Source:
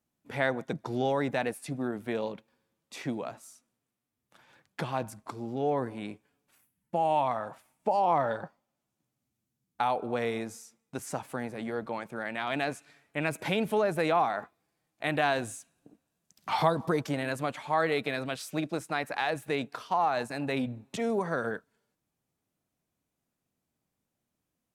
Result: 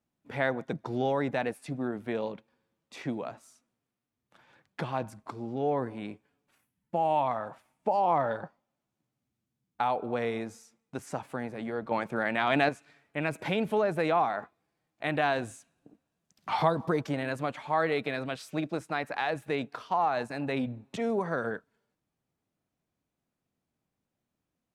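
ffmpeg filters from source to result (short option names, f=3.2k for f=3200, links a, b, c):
-filter_complex "[0:a]asettb=1/sr,asplit=3[a][b][c];[a]atrim=end=11.914[d];[b]atrim=start=11.91:end=12.69,asetpts=PTS-STARTPTS,afade=t=in:d=0.004:c=qsin,afade=t=out:st=0.776:d=0.004:c=qsin,acontrast=64[e];[c]atrim=start=12.686[f];[d][e]acrossfade=d=0.004:c1=hsin:c2=qsin[g];[g][f]acrossfade=d=0.004:c1=qsin:c2=hsin,lowpass=f=3.7k:p=1"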